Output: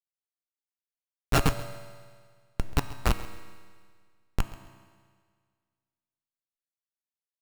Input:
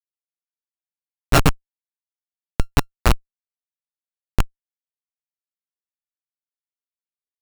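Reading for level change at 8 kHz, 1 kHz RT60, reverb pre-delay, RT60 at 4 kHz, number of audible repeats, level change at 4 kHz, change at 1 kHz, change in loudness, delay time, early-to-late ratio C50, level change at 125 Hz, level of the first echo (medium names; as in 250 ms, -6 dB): -8.0 dB, 1.8 s, 3 ms, 1.8 s, 1, -8.0 dB, -8.0 dB, -8.5 dB, 134 ms, 10.5 dB, -8.0 dB, -18.5 dB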